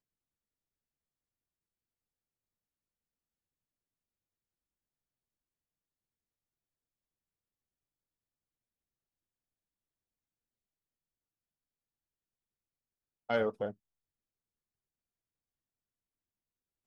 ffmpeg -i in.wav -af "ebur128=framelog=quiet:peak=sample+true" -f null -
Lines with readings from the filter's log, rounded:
Integrated loudness:
  I:         -34.5 LUFS
  Threshold: -45.6 LUFS
Loudness range:
  LRA:         3.1 LU
  Threshold: -61.5 LUFS
  LRA low:   -44.0 LUFS
  LRA high:  -40.9 LUFS
Sample peak:
  Peak:      -18.4 dBFS
True peak:
  Peak:      -18.4 dBFS